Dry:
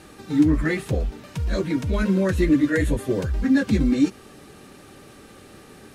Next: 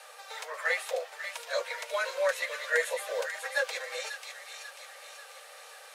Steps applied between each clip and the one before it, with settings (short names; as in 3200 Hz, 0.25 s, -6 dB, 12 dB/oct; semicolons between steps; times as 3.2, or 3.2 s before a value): steep high-pass 490 Hz 96 dB/oct; on a send: thin delay 0.541 s, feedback 51%, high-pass 2100 Hz, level -6 dB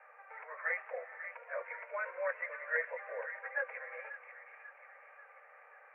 steep low-pass 2300 Hz 72 dB/oct; low shelf 460 Hz -10 dB; on a send at -17 dB: reverb, pre-delay 3 ms; on the sum: gain -5 dB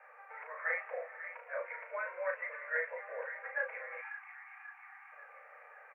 spectral delete 3.98–5.13, 360–720 Hz; vocal rider within 3 dB 2 s; doubler 35 ms -4.5 dB; gain -1.5 dB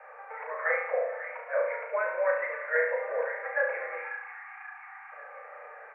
tilt -3.5 dB/oct; on a send: flutter echo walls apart 12 m, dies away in 0.65 s; on the sum: gain +8.5 dB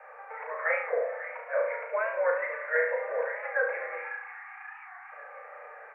record warp 45 rpm, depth 100 cents